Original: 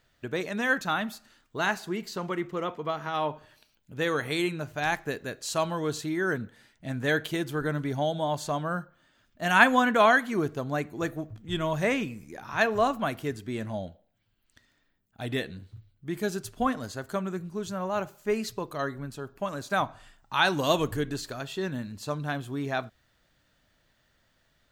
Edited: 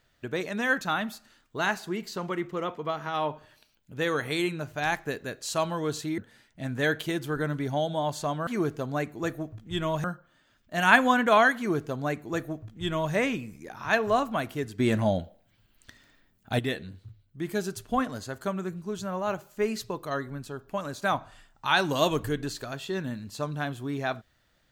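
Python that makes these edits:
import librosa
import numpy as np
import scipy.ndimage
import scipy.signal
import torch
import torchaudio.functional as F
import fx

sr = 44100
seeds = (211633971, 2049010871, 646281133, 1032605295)

y = fx.edit(x, sr, fx.cut(start_s=6.18, length_s=0.25),
    fx.duplicate(start_s=10.25, length_s=1.57, to_s=8.72),
    fx.clip_gain(start_s=13.47, length_s=1.8, db=9.0), tone=tone)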